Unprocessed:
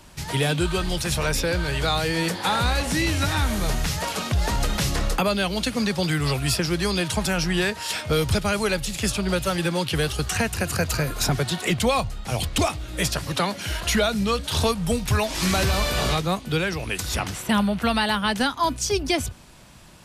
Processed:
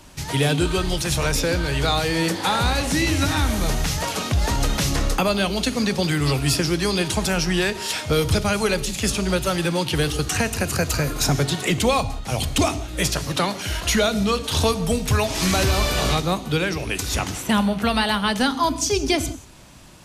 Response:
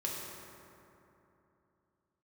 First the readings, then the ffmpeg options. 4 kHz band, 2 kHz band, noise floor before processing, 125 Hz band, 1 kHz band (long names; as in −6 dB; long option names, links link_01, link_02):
+2.0 dB, +1.0 dB, −39 dBFS, +2.0 dB, +1.5 dB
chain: -filter_complex "[0:a]asplit=2[link_01][link_02];[link_02]equalizer=frequency=315:width_type=o:width=0.33:gain=10,equalizer=frequency=1600:width_type=o:width=0.33:gain=-10,equalizer=frequency=6300:width_type=o:width=0.33:gain=9[link_03];[1:a]atrim=start_sample=2205,atrim=end_sample=6174,asetrate=31752,aresample=44100[link_04];[link_03][link_04]afir=irnorm=-1:irlink=0,volume=-12.5dB[link_05];[link_01][link_05]amix=inputs=2:normalize=0"